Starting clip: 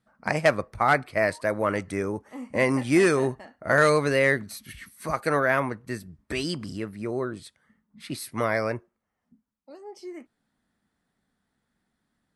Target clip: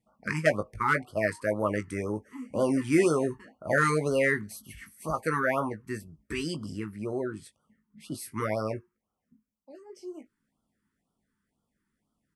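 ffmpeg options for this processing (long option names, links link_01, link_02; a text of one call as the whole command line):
ffmpeg -i in.wav -filter_complex "[0:a]equalizer=frequency=3900:width=2.9:gain=-9.5,asplit=2[link_01][link_02];[link_02]adelay=19,volume=-8dB[link_03];[link_01][link_03]amix=inputs=2:normalize=0,afftfilt=real='re*(1-between(b*sr/1024,580*pow(2100/580,0.5+0.5*sin(2*PI*2*pts/sr))/1.41,580*pow(2100/580,0.5+0.5*sin(2*PI*2*pts/sr))*1.41))':imag='im*(1-between(b*sr/1024,580*pow(2100/580,0.5+0.5*sin(2*PI*2*pts/sr))/1.41,580*pow(2100/580,0.5+0.5*sin(2*PI*2*pts/sr))*1.41))':win_size=1024:overlap=0.75,volume=-3dB" out.wav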